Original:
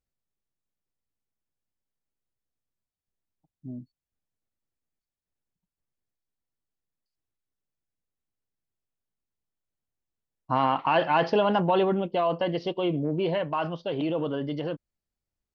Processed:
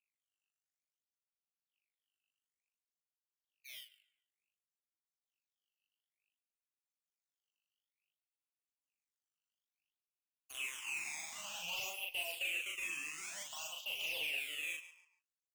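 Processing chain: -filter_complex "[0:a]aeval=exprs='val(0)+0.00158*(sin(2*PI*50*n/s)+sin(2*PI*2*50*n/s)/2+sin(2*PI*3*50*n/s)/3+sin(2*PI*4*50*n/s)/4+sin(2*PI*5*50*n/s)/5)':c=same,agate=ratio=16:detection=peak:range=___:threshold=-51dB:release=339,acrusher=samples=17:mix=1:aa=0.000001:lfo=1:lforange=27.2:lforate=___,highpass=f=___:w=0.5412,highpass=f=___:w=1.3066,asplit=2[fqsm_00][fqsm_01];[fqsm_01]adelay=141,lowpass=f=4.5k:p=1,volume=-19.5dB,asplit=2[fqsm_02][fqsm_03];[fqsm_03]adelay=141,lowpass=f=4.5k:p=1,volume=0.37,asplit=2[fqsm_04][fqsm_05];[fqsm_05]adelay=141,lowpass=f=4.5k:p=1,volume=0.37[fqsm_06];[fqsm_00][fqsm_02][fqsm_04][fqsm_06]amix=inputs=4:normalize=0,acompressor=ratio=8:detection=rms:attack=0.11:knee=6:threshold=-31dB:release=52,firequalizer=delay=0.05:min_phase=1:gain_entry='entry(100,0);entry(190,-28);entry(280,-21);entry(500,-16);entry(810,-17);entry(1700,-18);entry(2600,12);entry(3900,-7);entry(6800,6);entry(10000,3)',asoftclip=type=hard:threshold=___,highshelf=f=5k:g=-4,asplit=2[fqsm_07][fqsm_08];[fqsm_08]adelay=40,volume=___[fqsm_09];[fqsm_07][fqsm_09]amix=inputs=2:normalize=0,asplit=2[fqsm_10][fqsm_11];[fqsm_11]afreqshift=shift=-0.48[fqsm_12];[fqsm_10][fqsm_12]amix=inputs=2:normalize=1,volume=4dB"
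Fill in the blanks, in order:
-21dB, 0.56, 820, 820, -38dB, -2dB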